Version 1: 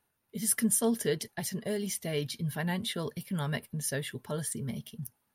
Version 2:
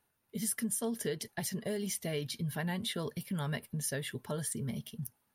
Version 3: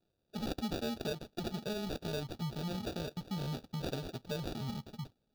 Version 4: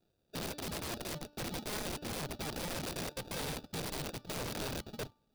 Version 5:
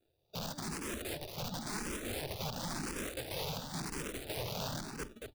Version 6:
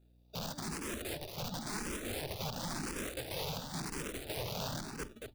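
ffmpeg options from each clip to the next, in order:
-af "acompressor=threshold=0.0251:ratio=4"
-af "acrusher=samples=42:mix=1:aa=0.000001,equalizer=f=2000:t=o:w=1:g=-9,equalizer=f=4000:t=o:w=1:g=10,equalizer=f=8000:t=o:w=1:g=-8,volume=0.794"
-af "bandreject=f=294.6:t=h:w=4,bandreject=f=589.2:t=h:w=4,bandreject=f=883.8:t=h:w=4,bandreject=f=1178.4:t=h:w=4,bandreject=f=1473:t=h:w=4,bandreject=f=1767.6:t=h:w=4,bandreject=f=2062.2:t=h:w=4,bandreject=f=2356.8:t=h:w=4,bandreject=f=2651.4:t=h:w=4,bandreject=f=2946:t=h:w=4,bandreject=f=3240.6:t=h:w=4,bandreject=f=3535.2:t=h:w=4,bandreject=f=3829.8:t=h:w=4,bandreject=f=4124.4:t=h:w=4,bandreject=f=4419:t=h:w=4,bandreject=f=4713.6:t=h:w=4,bandreject=f=5008.2:t=h:w=4,bandreject=f=5302.8:t=h:w=4,bandreject=f=5597.4:t=h:w=4,aeval=exprs='(mod(70.8*val(0)+1,2)-1)/70.8':c=same,volume=1.41"
-filter_complex "[0:a]aecho=1:1:50|227:0.126|0.501,asplit=2[s0][s1];[s1]afreqshift=0.95[s2];[s0][s2]amix=inputs=2:normalize=1,volume=1.26"
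-af "aeval=exprs='val(0)+0.000631*(sin(2*PI*60*n/s)+sin(2*PI*2*60*n/s)/2+sin(2*PI*3*60*n/s)/3+sin(2*PI*4*60*n/s)/4+sin(2*PI*5*60*n/s)/5)':c=same"

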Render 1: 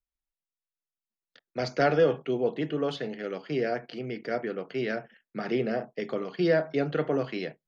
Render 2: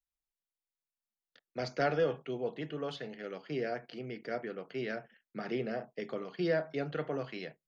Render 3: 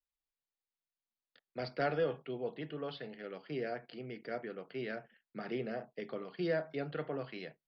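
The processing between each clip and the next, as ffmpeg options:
-af "adynamicequalizer=threshold=0.0112:dfrequency=310:dqfactor=0.92:tfrequency=310:tqfactor=0.92:attack=5:release=100:ratio=0.375:range=2.5:mode=cutabove:tftype=bell,volume=0.501"
-af "aresample=11025,aresample=44100,volume=0.708"

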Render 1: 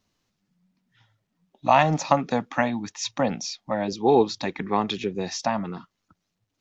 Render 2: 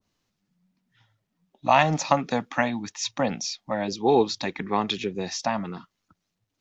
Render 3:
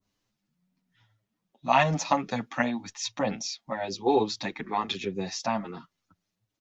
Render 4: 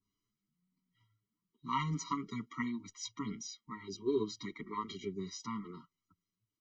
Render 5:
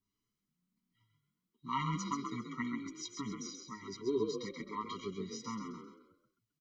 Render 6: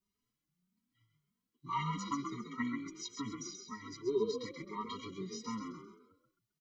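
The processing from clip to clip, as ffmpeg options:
-af "adynamicequalizer=threshold=0.0282:dfrequency=1500:dqfactor=0.7:tfrequency=1500:tqfactor=0.7:attack=5:release=100:ratio=0.375:range=2:mode=boostabove:tftype=highshelf,volume=0.841"
-filter_complex "[0:a]asplit=2[s0][s1];[s1]adelay=7.7,afreqshift=0.97[s2];[s0][s2]amix=inputs=2:normalize=1"
-af "afftfilt=real='re*eq(mod(floor(b*sr/1024/470),2),0)':imag='im*eq(mod(floor(b*sr/1024/470),2),0)':win_size=1024:overlap=0.75,volume=0.422"
-filter_complex "[0:a]asplit=5[s0][s1][s2][s3][s4];[s1]adelay=132,afreqshift=37,volume=0.531[s5];[s2]adelay=264,afreqshift=74,volume=0.191[s6];[s3]adelay=396,afreqshift=111,volume=0.0692[s7];[s4]adelay=528,afreqshift=148,volume=0.0248[s8];[s0][s5][s6][s7][s8]amix=inputs=5:normalize=0,volume=0.841"
-filter_complex "[0:a]asplit=2[s0][s1];[s1]adelay=2.9,afreqshift=1.7[s2];[s0][s2]amix=inputs=2:normalize=1,volume=1.33"

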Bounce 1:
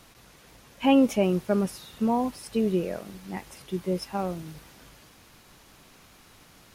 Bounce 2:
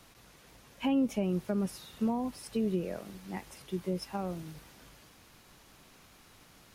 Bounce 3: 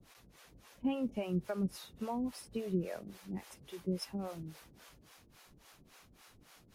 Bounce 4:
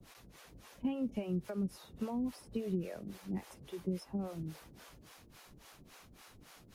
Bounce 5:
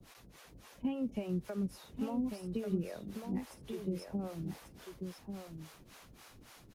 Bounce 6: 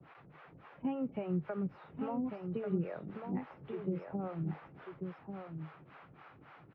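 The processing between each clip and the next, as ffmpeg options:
-filter_complex "[0:a]acrossover=split=260[s0][s1];[s1]acompressor=threshold=0.0355:ratio=6[s2];[s0][s2]amix=inputs=2:normalize=0,volume=0.631"
-filter_complex "[0:a]acrossover=split=450[s0][s1];[s0]aeval=exprs='val(0)*(1-1/2+1/2*cos(2*PI*3.6*n/s))':c=same[s2];[s1]aeval=exprs='val(0)*(1-1/2-1/2*cos(2*PI*3.6*n/s))':c=same[s3];[s2][s3]amix=inputs=2:normalize=0,volume=1.12"
-filter_complex "[0:a]acrossover=split=410|1200[s0][s1][s2];[s0]acompressor=threshold=0.0141:ratio=4[s3];[s1]acompressor=threshold=0.00224:ratio=4[s4];[s2]acompressor=threshold=0.001:ratio=4[s5];[s3][s4][s5]amix=inputs=3:normalize=0,volume=1.58"
-af "aecho=1:1:1143:0.473"
-af "highpass=120,equalizer=f=150:t=q:w=4:g=8,equalizer=f=220:t=q:w=4:g=-7,equalizer=f=810:t=q:w=4:g=4,equalizer=f=1300:t=q:w=4:g=6,lowpass=f=2400:w=0.5412,lowpass=f=2400:w=1.3066,volume=1.19"

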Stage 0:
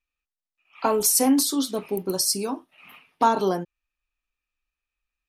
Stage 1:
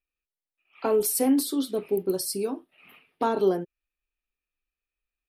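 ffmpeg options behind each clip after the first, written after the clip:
-af "equalizer=f=400:t=o:w=0.67:g=7,equalizer=f=1000:t=o:w=0.67:g=-6,equalizer=f=6300:t=o:w=0.67:g=-11,volume=0.631"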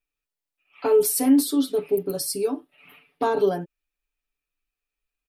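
-af "aecho=1:1:6.9:0.92"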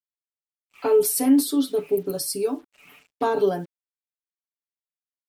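-af "acrusher=bits=8:mix=0:aa=0.5"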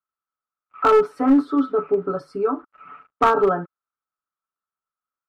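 -af "lowpass=f=1300:t=q:w=13,aeval=exprs='clip(val(0),-1,0.224)':c=same,volume=1.19"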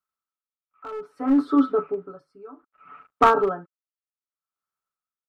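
-af "aeval=exprs='val(0)*pow(10,-23*(0.5-0.5*cos(2*PI*0.63*n/s))/20)':c=same,volume=1.19"

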